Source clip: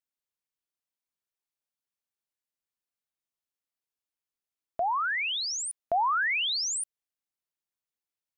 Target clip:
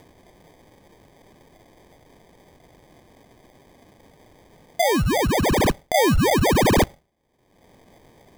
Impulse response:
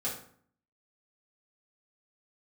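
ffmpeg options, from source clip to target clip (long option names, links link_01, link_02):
-filter_complex "[0:a]aemphasis=mode=production:type=cd,asplit=2[link_01][link_02];[1:a]atrim=start_sample=2205[link_03];[link_02][link_03]afir=irnorm=-1:irlink=0,volume=-22.5dB[link_04];[link_01][link_04]amix=inputs=2:normalize=0,acrusher=samples=32:mix=1:aa=0.000001,acompressor=mode=upward:threshold=-40dB:ratio=2.5,volume=8dB"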